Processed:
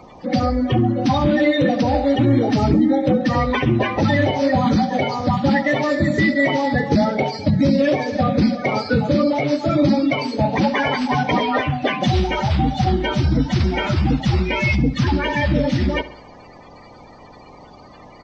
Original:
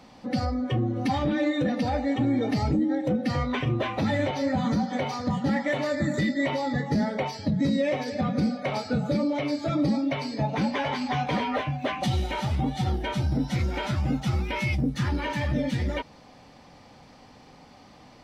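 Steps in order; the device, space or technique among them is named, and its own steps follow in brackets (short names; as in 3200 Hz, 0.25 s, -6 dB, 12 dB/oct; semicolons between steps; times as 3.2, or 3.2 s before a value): clip after many re-uploads (LPF 5600 Hz 24 dB/oct; bin magnitudes rounded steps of 30 dB); 5.59–6.18 notch 1600 Hz, Q 6.3; feedback echo 68 ms, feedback 52%, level -17 dB; gain +9 dB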